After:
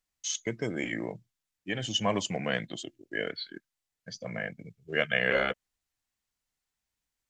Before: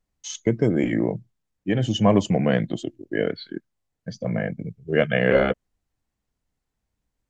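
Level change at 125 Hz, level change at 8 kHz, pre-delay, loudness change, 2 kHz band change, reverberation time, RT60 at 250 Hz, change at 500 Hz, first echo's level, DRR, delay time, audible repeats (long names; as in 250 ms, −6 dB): −14.5 dB, can't be measured, no reverb audible, −8.5 dB, −1.5 dB, no reverb audible, no reverb audible, −10.5 dB, no echo audible, no reverb audible, no echo audible, no echo audible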